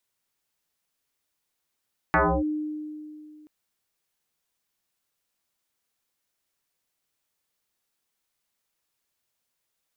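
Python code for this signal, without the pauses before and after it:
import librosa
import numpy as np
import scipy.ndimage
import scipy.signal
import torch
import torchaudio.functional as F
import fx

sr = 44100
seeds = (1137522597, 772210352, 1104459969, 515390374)

y = fx.fm2(sr, length_s=1.33, level_db=-16.0, carrier_hz=304.0, ratio=0.78, index=7.0, index_s=0.29, decay_s=2.5, shape='linear')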